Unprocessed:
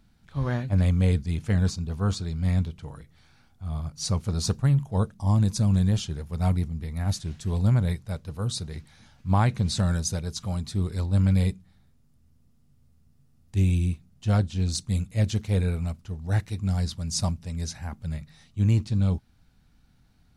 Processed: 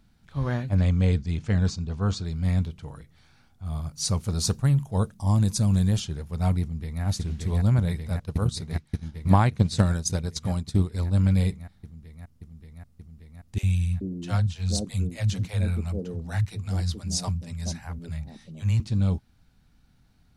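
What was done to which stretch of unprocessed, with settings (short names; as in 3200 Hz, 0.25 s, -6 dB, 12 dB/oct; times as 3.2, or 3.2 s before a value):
0.75–2.25 LPF 7700 Hz 24 dB/oct
3.66–6 high shelf 7300 Hz +8.5 dB
6.61–7.03 echo throw 0.58 s, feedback 85%, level -1 dB
8.25–10.95 transient shaper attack +8 dB, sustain -9 dB
13.58–18.8 three bands offset in time highs, lows, mids 50/430 ms, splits 180/580 Hz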